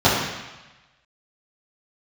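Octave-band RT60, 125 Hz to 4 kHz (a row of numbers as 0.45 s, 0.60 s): 1.2 s, 1.0 s, 1.0 s, 1.2 s, 1.2 s, 1.2 s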